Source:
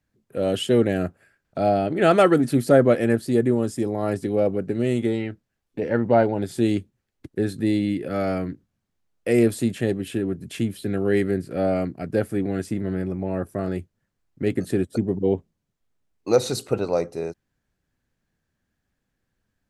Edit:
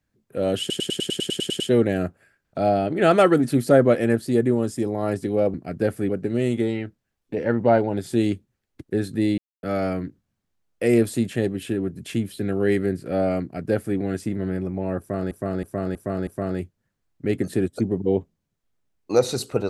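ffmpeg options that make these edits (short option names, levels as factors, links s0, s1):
-filter_complex "[0:a]asplit=19[s0][s1][s2][s3][s4][s5][s6][s7][s8][s9][s10][s11][s12][s13][s14][s15][s16][s17][s18];[s0]atrim=end=0.702[s19];[s1]atrim=start=0.598:end=0.702[s20];[s2]atrim=start=0.598:end=0.702[s21];[s3]atrim=start=0.598:end=0.702[s22];[s4]atrim=start=0.598:end=0.702[s23];[s5]atrim=start=0.598:end=0.702[s24];[s6]atrim=start=0.598:end=0.702[s25];[s7]atrim=start=0.598:end=0.702[s26];[s8]atrim=start=0.598:end=0.702[s27];[s9]atrim=start=0.598:end=0.702[s28];[s10]atrim=start=0.598:end=4.542[s29];[s11]atrim=start=11.868:end=12.422[s30];[s12]atrim=start=4.538:end=7.83,asetpts=PTS-STARTPTS,afade=t=out:st=3.288:d=0.004:c=hsin[s31];[s13]atrim=start=7.83:end=8.08,asetpts=PTS-STARTPTS,volume=0[s32];[s14]atrim=start=8.08:end=13.762,asetpts=PTS-STARTPTS,afade=t=in:d=0.004:c=hsin[s33];[s15]atrim=start=13.438:end=13.762[s34];[s16]atrim=start=13.438:end=13.762[s35];[s17]atrim=start=13.438:end=13.762[s36];[s18]atrim=start=13.438[s37];[s19][s20]acrossfade=d=0.004:c1=hsin:c2=hsin[s38];[s38][s21]acrossfade=d=0.004:c1=hsin:c2=hsin[s39];[s39][s22]acrossfade=d=0.004:c1=hsin:c2=hsin[s40];[s40][s23]acrossfade=d=0.004:c1=hsin:c2=hsin[s41];[s41][s24]acrossfade=d=0.004:c1=hsin:c2=hsin[s42];[s42][s25]acrossfade=d=0.004:c1=hsin:c2=hsin[s43];[s43][s26]acrossfade=d=0.004:c1=hsin:c2=hsin[s44];[s44][s27]acrossfade=d=0.004:c1=hsin:c2=hsin[s45];[s45][s28]acrossfade=d=0.004:c1=hsin:c2=hsin[s46];[s46][s29]acrossfade=d=0.004:c1=hsin:c2=hsin[s47];[s47][s30]acrossfade=d=0.004:c1=hsin:c2=hsin[s48];[s31][s32][s33]concat=n=3:v=0:a=1[s49];[s48][s49]acrossfade=d=0.004:c1=hsin:c2=hsin[s50];[s50][s34]acrossfade=d=0.004:c1=hsin:c2=hsin[s51];[s51][s35]acrossfade=d=0.004:c1=hsin:c2=hsin[s52];[s52][s36]acrossfade=d=0.004:c1=hsin:c2=hsin[s53];[s53][s37]acrossfade=d=0.004:c1=hsin:c2=hsin"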